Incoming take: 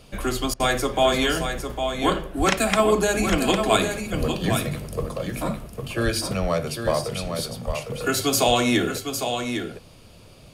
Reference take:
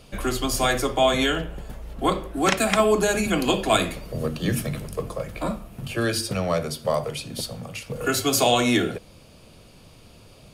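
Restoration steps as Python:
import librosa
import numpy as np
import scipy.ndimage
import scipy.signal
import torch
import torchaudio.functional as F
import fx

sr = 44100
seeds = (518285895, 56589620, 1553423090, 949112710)

y = fx.fix_deplosive(x, sr, at_s=(2.38, 3.3, 4.19, 6.04, 6.41, 7.66))
y = fx.fix_interpolate(y, sr, at_s=(0.54,), length_ms=57.0)
y = fx.fix_echo_inverse(y, sr, delay_ms=805, level_db=-7.0)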